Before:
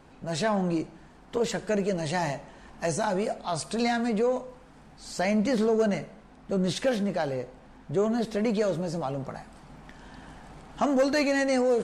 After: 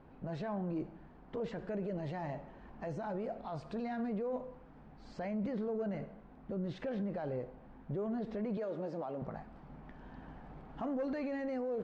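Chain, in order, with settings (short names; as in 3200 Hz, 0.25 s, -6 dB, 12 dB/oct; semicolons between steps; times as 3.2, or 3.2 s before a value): 8.57–9.22 HPF 280 Hz 12 dB/oct; limiter -26.5 dBFS, peak gain reduction 10 dB; tape spacing loss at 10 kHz 39 dB; gain -2.5 dB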